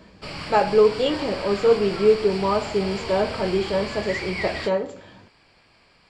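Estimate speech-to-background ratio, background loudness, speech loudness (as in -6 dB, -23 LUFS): 10.0 dB, -32.0 LUFS, -22.0 LUFS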